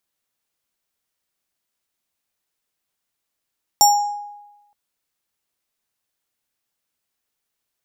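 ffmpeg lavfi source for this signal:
ffmpeg -f lavfi -i "aevalsrc='0.447*pow(10,-3*t/1.05)*sin(2*PI*824*t+1.3*pow(10,-3*t/0.76)*sin(2*PI*7.74*824*t))':duration=0.92:sample_rate=44100" out.wav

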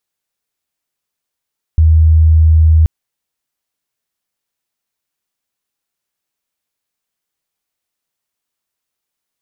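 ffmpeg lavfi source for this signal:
ffmpeg -f lavfi -i "aevalsrc='0.596*sin(2*PI*79.6*t)':duration=1.08:sample_rate=44100" out.wav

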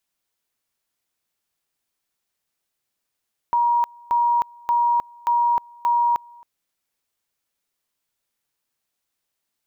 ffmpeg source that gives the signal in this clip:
ffmpeg -f lavfi -i "aevalsrc='pow(10,(-15.5-27*gte(mod(t,0.58),0.31))/20)*sin(2*PI*951*t)':duration=2.9:sample_rate=44100" out.wav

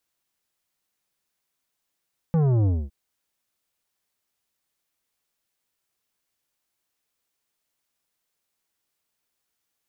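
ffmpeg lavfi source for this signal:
ffmpeg -f lavfi -i "aevalsrc='0.119*clip((0.56-t)/0.24,0,1)*tanh(3.55*sin(2*PI*170*0.56/log(65/170)*(exp(log(65/170)*t/0.56)-1)))/tanh(3.55)':duration=0.56:sample_rate=44100" out.wav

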